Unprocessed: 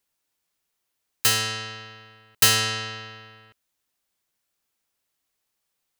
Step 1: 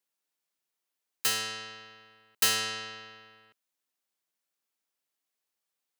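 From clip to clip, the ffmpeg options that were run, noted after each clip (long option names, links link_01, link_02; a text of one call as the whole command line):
ffmpeg -i in.wav -af "highpass=200,volume=-7.5dB" out.wav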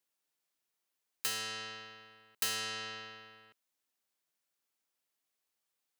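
ffmpeg -i in.wav -af "acompressor=threshold=-38dB:ratio=2" out.wav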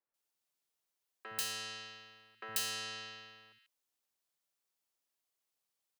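ffmpeg -i in.wav -filter_complex "[0:a]acrossover=split=250|1900[link_01][link_02][link_03];[link_01]adelay=60[link_04];[link_03]adelay=140[link_05];[link_04][link_02][link_05]amix=inputs=3:normalize=0,volume=-1.5dB" out.wav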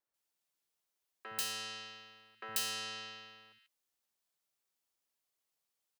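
ffmpeg -i in.wav -filter_complex "[0:a]asplit=2[link_01][link_02];[link_02]adelay=13,volume=-13dB[link_03];[link_01][link_03]amix=inputs=2:normalize=0" out.wav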